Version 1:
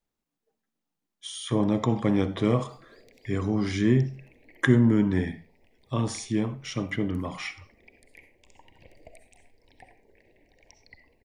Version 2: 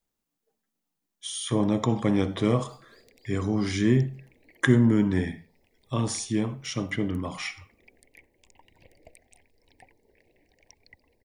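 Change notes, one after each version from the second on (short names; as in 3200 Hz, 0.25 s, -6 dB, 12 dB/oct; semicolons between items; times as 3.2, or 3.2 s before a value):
first sound: send off; master: add high shelf 6000 Hz +8.5 dB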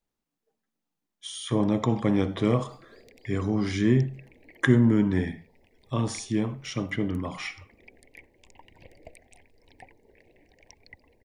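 first sound +5.5 dB; master: add high shelf 6000 Hz -8.5 dB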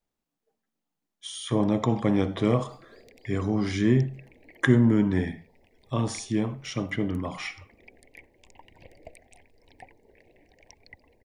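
master: add bell 690 Hz +2.5 dB 0.64 oct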